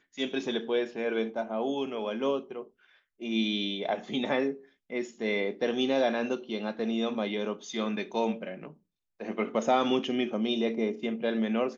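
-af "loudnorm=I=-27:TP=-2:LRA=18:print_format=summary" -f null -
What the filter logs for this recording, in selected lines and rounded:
Input Integrated:    -30.1 LUFS
Input True Peak:     -13.1 dBTP
Input LRA:             2.4 LU
Input Threshold:     -40.6 LUFS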